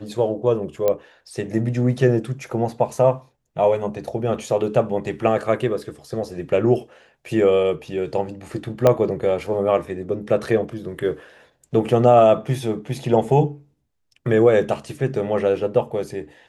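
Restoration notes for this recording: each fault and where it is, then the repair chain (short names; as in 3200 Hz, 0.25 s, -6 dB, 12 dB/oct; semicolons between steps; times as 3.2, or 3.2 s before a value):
0.88 pop -8 dBFS
8.87 pop -4 dBFS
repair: de-click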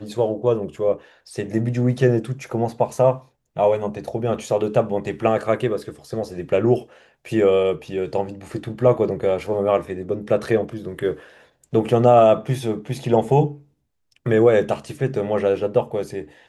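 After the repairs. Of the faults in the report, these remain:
8.87 pop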